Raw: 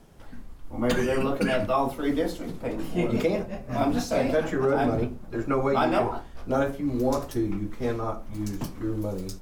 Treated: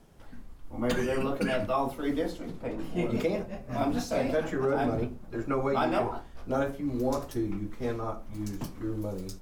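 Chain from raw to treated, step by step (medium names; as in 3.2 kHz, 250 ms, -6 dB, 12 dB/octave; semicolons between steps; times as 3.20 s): 2.26–2.95 s: treble shelf 9 kHz -> 5.5 kHz -7 dB; trim -4 dB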